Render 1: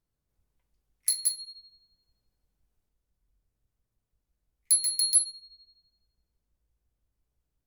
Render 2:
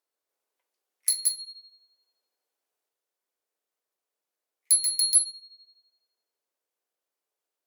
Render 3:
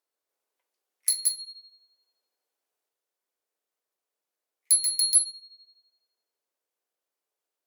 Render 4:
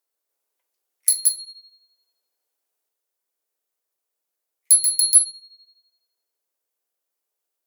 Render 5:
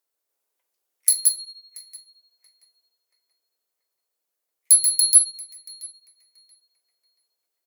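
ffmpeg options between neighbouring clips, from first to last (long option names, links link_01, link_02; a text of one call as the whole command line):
ffmpeg -i in.wav -af "highpass=frequency=410:width=0.5412,highpass=frequency=410:width=1.3066,volume=2dB" out.wav
ffmpeg -i in.wav -af anull out.wav
ffmpeg -i in.wav -af "crystalizer=i=1:c=0" out.wav
ffmpeg -i in.wav -filter_complex "[0:a]asplit=2[link_01][link_02];[link_02]adelay=681,lowpass=frequency=2200:poles=1,volume=-11dB,asplit=2[link_03][link_04];[link_04]adelay=681,lowpass=frequency=2200:poles=1,volume=0.47,asplit=2[link_05][link_06];[link_06]adelay=681,lowpass=frequency=2200:poles=1,volume=0.47,asplit=2[link_07][link_08];[link_08]adelay=681,lowpass=frequency=2200:poles=1,volume=0.47,asplit=2[link_09][link_10];[link_10]adelay=681,lowpass=frequency=2200:poles=1,volume=0.47[link_11];[link_01][link_03][link_05][link_07][link_09][link_11]amix=inputs=6:normalize=0" out.wav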